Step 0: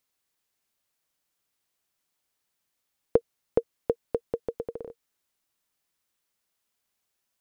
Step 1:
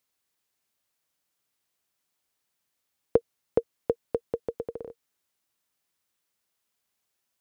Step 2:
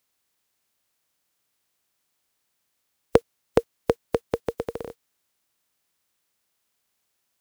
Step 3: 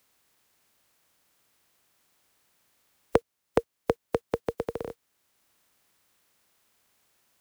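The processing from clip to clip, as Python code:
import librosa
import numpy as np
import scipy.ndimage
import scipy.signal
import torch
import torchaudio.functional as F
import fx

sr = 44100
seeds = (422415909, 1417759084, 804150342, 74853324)

y1 = scipy.signal.sosfilt(scipy.signal.butter(2, 46.0, 'highpass', fs=sr, output='sos'), x)
y2 = fx.spec_flatten(y1, sr, power=0.69)
y2 = F.gain(torch.from_numpy(y2), 4.5).numpy()
y3 = fx.band_squash(y2, sr, depth_pct=40)
y3 = F.gain(torch.from_numpy(y3), -3.0).numpy()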